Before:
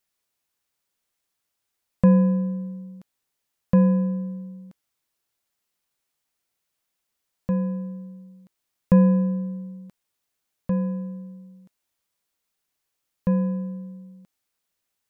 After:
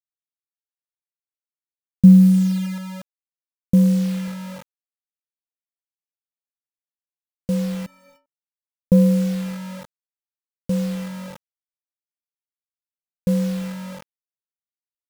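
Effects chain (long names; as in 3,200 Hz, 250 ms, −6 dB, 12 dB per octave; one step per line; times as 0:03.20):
low-pass filter sweep 210 Hz → 420 Hz, 0:02.43–0:04.56
bit-depth reduction 6 bits, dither none
0:07.86–0:08.26: stiff-string resonator 270 Hz, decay 0.44 s, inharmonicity 0.03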